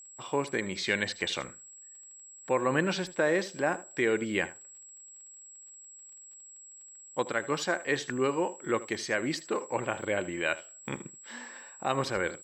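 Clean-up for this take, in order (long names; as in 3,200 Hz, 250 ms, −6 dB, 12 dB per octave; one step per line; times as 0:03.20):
click removal
notch filter 7,700 Hz, Q 30
echo removal 78 ms −17.5 dB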